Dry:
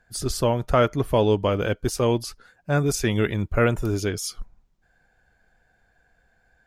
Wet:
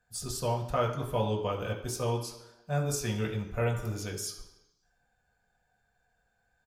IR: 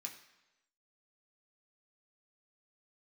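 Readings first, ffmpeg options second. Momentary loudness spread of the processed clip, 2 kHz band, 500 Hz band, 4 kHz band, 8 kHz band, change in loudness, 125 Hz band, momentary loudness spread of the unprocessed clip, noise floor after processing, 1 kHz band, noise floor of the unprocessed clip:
7 LU, -11.0 dB, -10.0 dB, -8.0 dB, -5.5 dB, -9.0 dB, -7.0 dB, 8 LU, -75 dBFS, -7.0 dB, -66 dBFS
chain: -filter_complex "[0:a]equalizer=f=250:t=o:w=1:g=-9,equalizer=f=2k:t=o:w=1:g=-10,equalizer=f=8k:t=o:w=1:g=-4,aecho=1:1:73|146|219|292:0.141|0.0607|0.0261|0.0112[a];[1:a]atrim=start_sample=2205[b];[a][b]afir=irnorm=-1:irlink=0"

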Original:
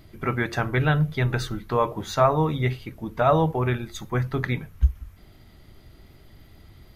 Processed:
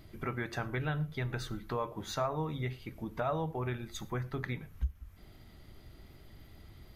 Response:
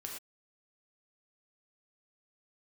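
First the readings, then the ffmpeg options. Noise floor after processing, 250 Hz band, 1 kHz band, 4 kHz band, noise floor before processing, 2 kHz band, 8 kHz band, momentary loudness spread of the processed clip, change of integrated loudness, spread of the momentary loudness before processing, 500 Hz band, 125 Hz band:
-56 dBFS, -11.5 dB, -13.0 dB, -9.0 dB, -51 dBFS, -11.5 dB, -7.0 dB, 21 LU, -12.5 dB, 9 LU, -13.0 dB, -12.5 dB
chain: -filter_complex "[0:a]acompressor=threshold=-34dB:ratio=2,asplit=2[a][b];[1:a]atrim=start_sample=2205[c];[b][c]afir=irnorm=-1:irlink=0,volume=-14dB[d];[a][d]amix=inputs=2:normalize=0,volume=-5dB"

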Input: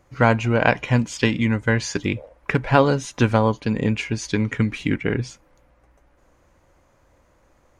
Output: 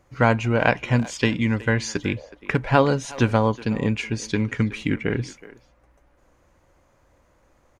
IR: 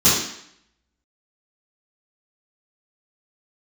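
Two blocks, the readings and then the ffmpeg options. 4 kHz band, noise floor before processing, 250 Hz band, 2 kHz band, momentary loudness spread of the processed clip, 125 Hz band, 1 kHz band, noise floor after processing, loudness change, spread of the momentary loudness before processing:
-1.5 dB, -60 dBFS, -1.5 dB, -1.5 dB, 8 LU, -1.5 dB, -1.5 dB, -61 dBFS, -1.5 dB, 8 LU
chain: -filter_complex "[0:a]asplit=2[a][b];[b]adelay=370,highpass=300,lowpass=3.4k,asoftclip=type=hard:threshold=-10dB,volume=-17dB[c];[a][c]amix=inputs=2:normalize=0,volume=-1.5dB"

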